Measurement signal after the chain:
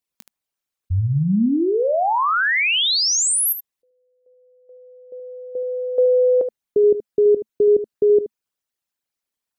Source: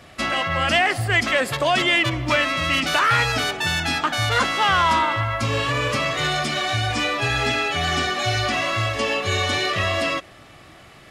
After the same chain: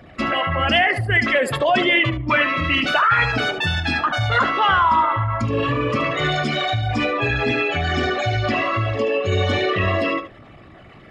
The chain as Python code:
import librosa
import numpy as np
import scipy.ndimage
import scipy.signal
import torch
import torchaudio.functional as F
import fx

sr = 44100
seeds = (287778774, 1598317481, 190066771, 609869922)

p1 = fx.envelope_sharpen(x, sr, power=2.0)
p2 = fx.peak_eq(p1, sr, hz=220.0, db=3.0, octaves=0.29)
p3 = p2 + fx.room_early_taps(p2, sr, ms=(21, 75), db=(-17.0, -11.0), dry=0)
y = F.gain(torch.from_numpy(p3), 1.5).numpy()